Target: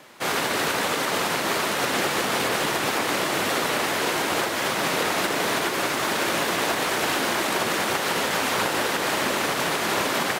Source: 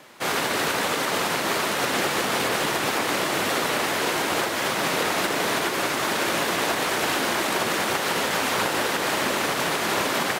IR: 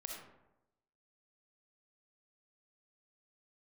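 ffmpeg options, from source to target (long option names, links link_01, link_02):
-filter_complex "[0:a]asettb=1/sr,asplit=3[link_01][link_02][link_03];[link_01]atrim=end=5.394[link_04];[link_02]atrim=start=5.39:end=7.4,asetpts=PTS-STARTPTS,afade=type=in:duration=0.004:curve=qsin,afade=type=out:start_time=2.006:duration=0.004:curve=qsin,acrusher=bits=8:mode=log:mix=0:aa=0.000001[link_05];[link_03]atrim=start=7.396[link_06];[link_04][link_05]acrossfade=duration=0.004:curve1=hsin:curve2=qsin[link_07];[link_07][link_06]acrossfade=duration=0.004:curve1=qsin:curve2=hsin"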